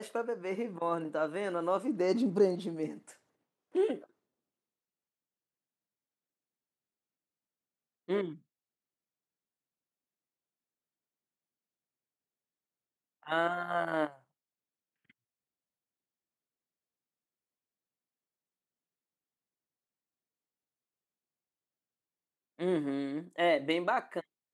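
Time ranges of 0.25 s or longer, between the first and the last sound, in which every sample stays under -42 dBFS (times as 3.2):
3.11–3.75
4.04–8.09
8.33–13.26
14.11–22.59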